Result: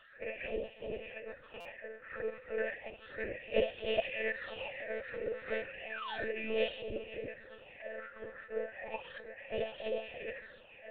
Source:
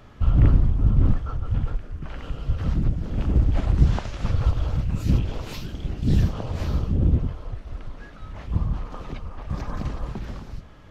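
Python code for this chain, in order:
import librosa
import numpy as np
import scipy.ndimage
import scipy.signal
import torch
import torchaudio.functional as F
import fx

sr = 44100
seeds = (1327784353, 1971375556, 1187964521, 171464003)

p1 = fx.filter_lfo_highpass(x, sr, shape='sine', hz=3.0, low_hz=490.0, high_hz=1800.0, q=1.3)
p2 = fx.formant_shift(p1, sr, semitones=-3)
p3 = fx.vowel_filter(p2, sr, vowel='e')
p4 = fx.phaser_stages(p3, sr, stages=6, low_hz=190.0, high_hz=1600.0, hz=0.33, feedback_pct=45)
p5 = fx.spec_paint(p4, sr, seeds[0], shape='fall', start_s=5.9, length_s=0.64, low_hz=200.0, high_hz=1900.0, level_db=-58.0)
p6 = p5 + fx.echo_feedback(p5, sr, ms=497, feedback_pct=28, wet_db=-21, dry=0)
p7 = fx.lpc_monotone(p6, sr, seeds[1], pitch_hz=220.0, order=16)
p8 = fx.buffer_glitch(p7, sr, at_s=(1.6,), block=256, repeats=8)
y = F.gain(torch.from_numpy(p8), 16.0).numpy()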